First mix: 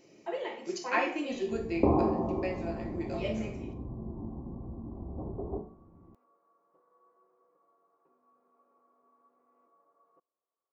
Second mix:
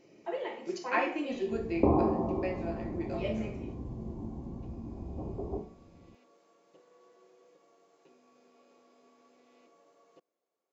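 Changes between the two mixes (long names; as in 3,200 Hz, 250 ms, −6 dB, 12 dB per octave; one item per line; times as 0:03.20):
first sound: remove transistor ladder low-pass 1,300 Hz, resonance 65%
master: add low-pass filter 3,400 Hz 6 dB per octave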